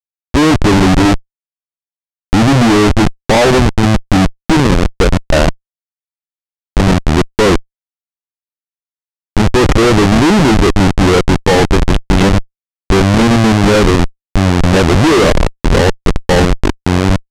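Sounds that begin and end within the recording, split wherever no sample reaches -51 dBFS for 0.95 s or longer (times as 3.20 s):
2.33–5.57 s
6.77–7.64 s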